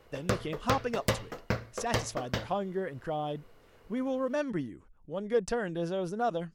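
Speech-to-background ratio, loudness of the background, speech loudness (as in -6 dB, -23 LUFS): 1.0 dB, -35.0 LUFS, -34.0 LUFS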